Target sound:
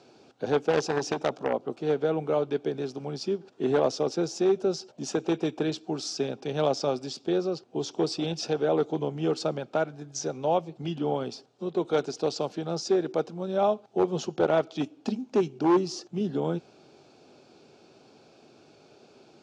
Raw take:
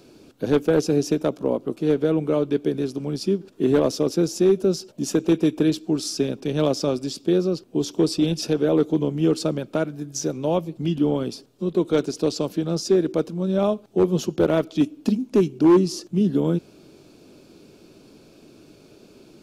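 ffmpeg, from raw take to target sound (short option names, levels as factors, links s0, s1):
-filter_complex "[0:a]asplit=3[s0][s1][s2];[s0]afade=t=out:st=0.69:d=0.02[s3];[s1]aeval=exprs='0.316*(cos(1*acos(clip(val(0)/0.316,-1,1)))-cos(1*PI/2))+0.0891*(cos(3*acos(clip(val(0)/0.316,-1,1)))-cos(3*PI/2))+0.0708*(cos(5*acos(clip(val(0)/0.316,-1,1)))-cos(5*PI/2))':c=same,afade=t=in:st=0.69:d=0.02,afade=t=out:st=1.52:d=0.02[s4];[s2]afade=t=in:st=1.52:d=0.02[s5];[s3][s4][s5]amix=inputs=3:normalize=0,highpass=130,equalizer=f=190:t=q:w=4:g=-7,equalizer=f=300:t=q:w=4:g=-7,equalizer=f=780:t=q:w=4:g=10,equalizer=f=1400:t=q:w=4:g=3,lowpass=f=6900:w=0.5412,lowpass=f=6900:w=1.3066,volume=0.631"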